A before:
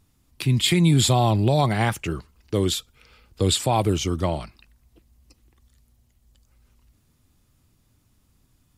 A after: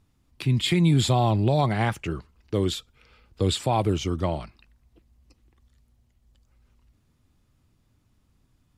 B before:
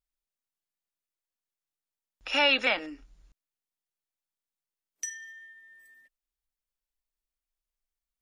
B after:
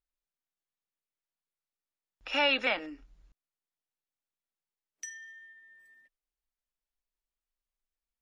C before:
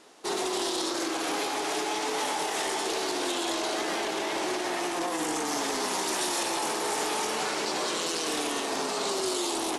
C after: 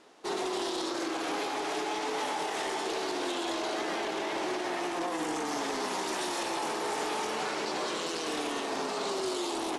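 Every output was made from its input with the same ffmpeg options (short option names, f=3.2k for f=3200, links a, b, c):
-af "lowpass=f=3.7k:p=1,volume=-2dB"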